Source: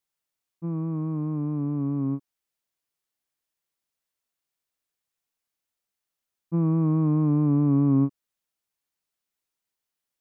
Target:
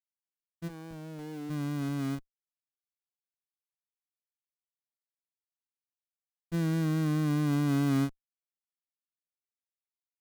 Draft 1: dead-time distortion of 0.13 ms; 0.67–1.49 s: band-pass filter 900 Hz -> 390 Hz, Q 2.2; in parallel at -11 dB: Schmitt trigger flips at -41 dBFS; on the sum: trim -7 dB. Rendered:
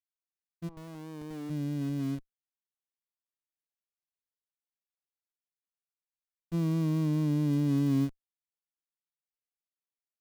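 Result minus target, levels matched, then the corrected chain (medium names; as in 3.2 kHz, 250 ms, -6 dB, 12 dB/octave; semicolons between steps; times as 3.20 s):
dead-time distortion: distortion -14 dB
dead-time distortion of 0.44 ms; 0.67–1.49 s: band-pass filter 900 Hz -> 390 Hz, Q 2.2; in parallel at -11 dB: Schmitt trigger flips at -41 dBFS; on the sum: trim -7 dB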